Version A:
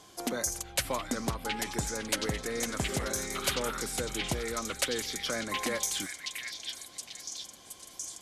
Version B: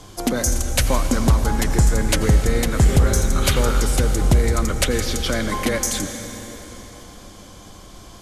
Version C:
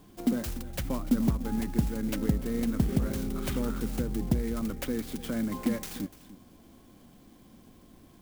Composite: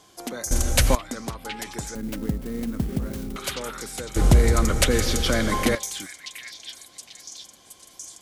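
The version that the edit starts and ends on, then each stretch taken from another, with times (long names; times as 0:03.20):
A
0:00.51–0:00.95: punch in from B
0:01.95–0:03.36: punch in from C
0:04.16–0:05.75: punch in from B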